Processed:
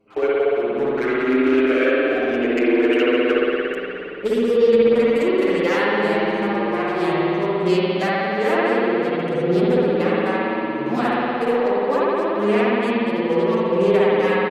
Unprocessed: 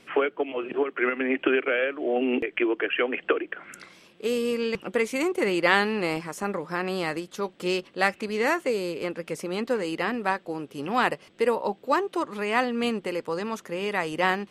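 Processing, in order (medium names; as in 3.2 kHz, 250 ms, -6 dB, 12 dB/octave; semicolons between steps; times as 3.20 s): local Wiener filter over 25 samples; recorder AGC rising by 11 dB/s; one-sided clip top -15 dBFS, bottom -10.5 dBFS; spring tank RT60 3.5 s, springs 58 ms, chirp 30 ms, DRR -8 dB; endless flanger 7.3 ms +0.49 Hz; trim -1 dB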